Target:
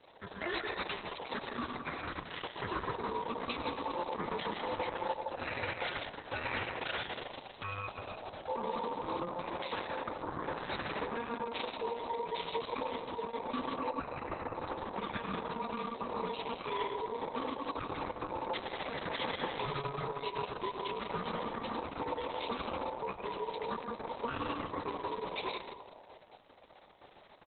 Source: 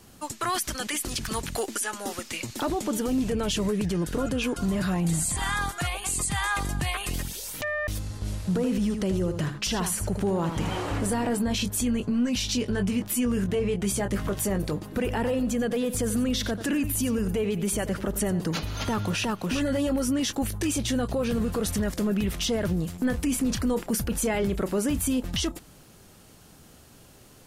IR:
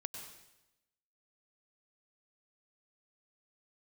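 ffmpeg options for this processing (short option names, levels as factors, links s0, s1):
-filter_complex "[0:a]acrusher=bits=8:mix=0:aa=0.000001,highshelf=f=7500:g=3,asplit=2[s0][s1];[s1]adelay=167,lowpass=f=800:p=1,volume=0.376,asplit=2[s2][s3];[s3]adelay=167,lowpass=f=800:p=1,volume=0.55,asplit=2[s4][s5];[s5]adelay=167,lowpass=f=800:p=1,volume=0.55,asplit=2[s6][s7];[s7]adelay=167,lowpass=f=800:p=1,volume=0.55,asplit=2[s8][s9];[s9]adelay=167,lowpass=f=800:p=1,volume=0.55,asplit=2[s10][s11];[s11]adelay=167,lowpass=f=800:p=1,volume=0.55,asplit=2[s12][s13];[s13]adelay=167,lowpass=f=800:p=1,volume=0.55[s14];[s0][s2][s4][s6][s8][s10][s12][s14]amix=inputs=8:normalize=0[s15];[1:a]atrim=start_sample=2205[s16];[s15][s16]afir=irnorm=-1:irlink=0,acrossover=split=150|1600[s17][s18][s19];[s17]acompressor=threshold=0.00447:ratio=4[s20];[s18]acompressor=threshold=0.0282:ratio=4[s21];[s19]acompressor=threshold=0.02:ratio=4[s22];[s20][s21][s22]amix=inputs=3:normalize=0,aeval=exprs='val(0)*sin(2*PI*700*n/s)':c=same,highpass=f=59:w=0.5412,highpass=f=59:w=1.3066,asettb=1/sr,asplit=3[s23][s24][s25];[s23]atrim=end=9.594[s26];[s24]atrim=start=9.59:end=10.26,asetpts=PTS-STARTPTS,afade=t=in:d=0.004:c=qsin,afade=t=out:st=0.666:d=0.004:c=qsin,lowshelf=f=86:g=-11.5[s27];[s25]atrim=start=10.256[s28];[s26][s27]acrossfade=d=0.004:c1=hsin:c2=qsin[s29];[s29][s28]acrossfade=d=0.004:c1=qsin:c2=hsin,asplit=3[s30][s31][s32];[s30]afade=t=out:st=11.17:d=0.02[s33];[s31]acrusher=bits=7:mode=log:mix=0:aa=0.000001,afade=t=in:st=11.17:d=0.02,afade=t=out:st=11.86:d=0.02[s34];[s32]afade=t=in:st=11.86:d=0.02[s35];[s33][s34][s35]amix=inputs=3:normalize=0,asettb=1/sr,asplit=3[s36][s37][s38];[s36]atrim=end=13.784[s39];[s37]atrim=start=13.78:end=14.56,asetpts=PTS-STARTPTS,afade=t=in:d=0.004:c=qsin,afade=t=out:st=0.776:d=0.004:c=qsin,asuperstop=centerf=3400:order=4:qfactor=3.5[s40];[s38]atrim=start=14.556[s41];[s39][s40]acrossfade=d=0.004:c1=hsin:c2=qsin[s42];[s42][s41]acrossfade=d=0.004:c1=qsin:c2=hsin" -ar 48000 -c:a libopus -b:a 6k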